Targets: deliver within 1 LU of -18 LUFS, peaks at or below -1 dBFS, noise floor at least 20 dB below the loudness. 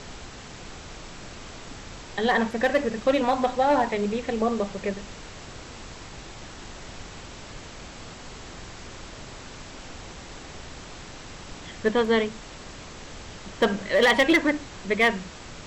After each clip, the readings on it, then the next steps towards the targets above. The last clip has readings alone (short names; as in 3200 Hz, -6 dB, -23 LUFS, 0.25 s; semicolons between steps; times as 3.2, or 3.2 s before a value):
clipped 0.3%; flat tops at -13.0 dBFS; noise floor -42 dBFS; noise floor target -44 dBFS; loudness -24.0 LUFS; peak -13.0 dBFS; loudness target -18.0 LUFS
-> clip repair -13 dBFS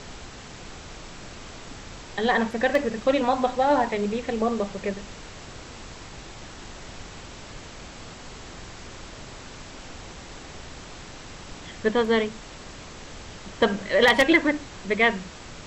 clipped 0.0%; noise floor -42 dBFS; noise floor target -44 dBFS
-> noise print and reduce 6 dB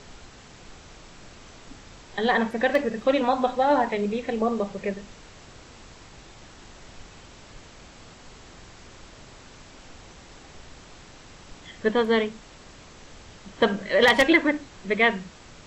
noise floor -48 dBFS; loudness -23.5 LUFS; peak -4.0 dBFS; loudness target -18.0 LUFS
-> gain +5.5 dB; limiter -1 dBFS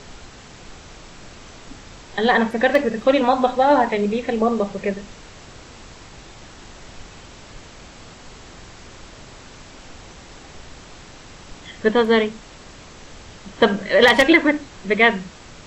loudness -18.0 LUFS; peak -1.0 dBFS; noise floor -43 dBFS